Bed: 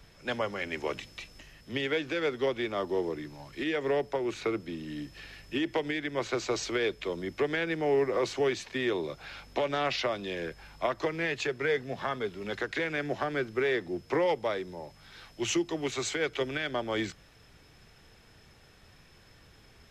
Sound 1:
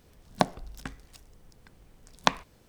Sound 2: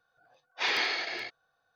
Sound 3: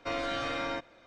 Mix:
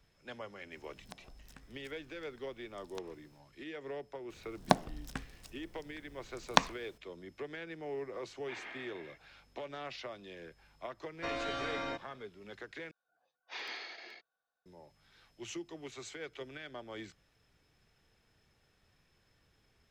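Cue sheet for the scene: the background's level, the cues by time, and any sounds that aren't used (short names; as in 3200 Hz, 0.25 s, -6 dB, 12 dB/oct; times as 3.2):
bed -14 dB
0.71 add 1 -9 dB + compressor 4:1, threshold -41 dBFS
4.3 add 1 -2 dB
7.88 add 2 -17 dB + mistuned SSB -53 Hz 200–3000 Hz
11.17 add 3 -4.5 dB
12.91 replace with 2 -14.5 dB + HPF 170 Hz 24 dB/oct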